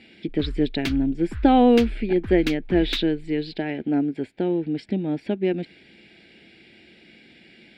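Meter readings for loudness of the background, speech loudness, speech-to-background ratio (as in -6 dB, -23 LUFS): -34.5 LUFS, -23.0 LUFS, 11.5 dB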